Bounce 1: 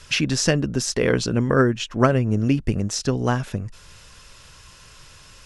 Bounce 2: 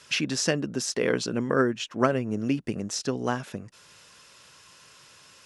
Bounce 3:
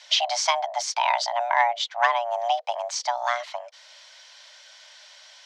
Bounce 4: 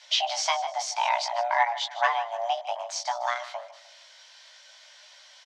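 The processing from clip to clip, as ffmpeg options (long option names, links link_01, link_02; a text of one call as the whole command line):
ffmpeg -i in.wav -af "highpass=190,volume=-4.5dB" out.wav
ffmpeg -i in.wav -af "acontrast=65,afreqshift=470,lowpass=frequency=4600:width_type=q:width=1.9,volume=-4.5dB" out.wav
ffmpeg -i in.wav -af "flanger=delay=16:depth=3.3:speed=0.57,aecho=1:1:153|306|459:0.168|0.0621|0.023" out.wav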